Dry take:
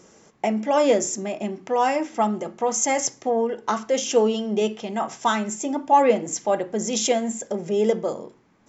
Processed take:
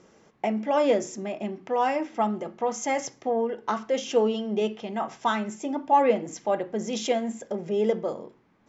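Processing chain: low-pass 4.3 kHz 12 dB/octave; trim -3.5 dB

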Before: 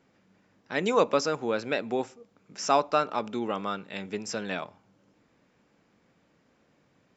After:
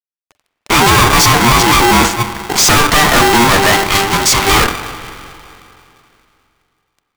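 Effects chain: fuzz box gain 46 dB, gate -55 dBFS; 3.47–4.46 s: high-pass 170 Hz -> 680 Hz 6 dB/octave; spring tank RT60 2.8 s, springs 44/50 ms, chirp 55 ms, DRR 10 dB; polarity switched at an audio rate 590 Hz; trim +5.5 dB

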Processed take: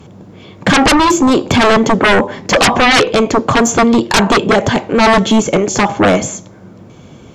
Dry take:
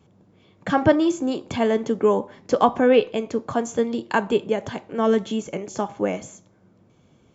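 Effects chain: sine folder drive 19 dB, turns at -2.5 dBFS; trim -3 dB

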